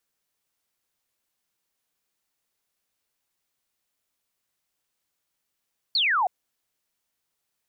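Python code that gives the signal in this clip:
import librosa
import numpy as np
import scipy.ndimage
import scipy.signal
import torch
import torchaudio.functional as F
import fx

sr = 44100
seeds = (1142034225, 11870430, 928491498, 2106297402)

y = fx.laser_zap(sr, level_db=-19.5, start_hz=4600.0, end_hz=690.0, length_s=0.32, wave='sine')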